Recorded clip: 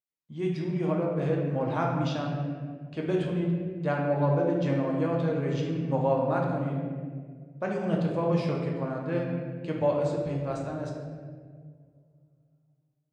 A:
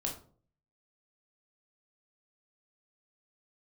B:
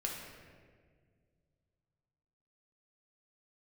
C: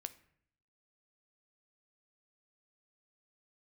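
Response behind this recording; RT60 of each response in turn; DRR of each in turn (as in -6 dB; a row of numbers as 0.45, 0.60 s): B; 0.45, 1.8, 0.65 s; -0.5, -1.5, 11.0 dB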